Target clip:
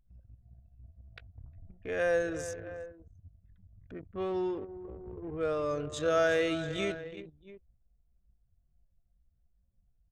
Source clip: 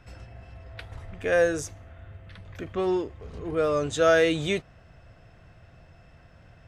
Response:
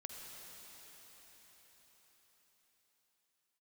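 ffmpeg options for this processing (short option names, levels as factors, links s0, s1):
-af "aecho=1:1:230|438:0.237|0.188,atempo=0.66,anlmdn=3.98,volume=0.422"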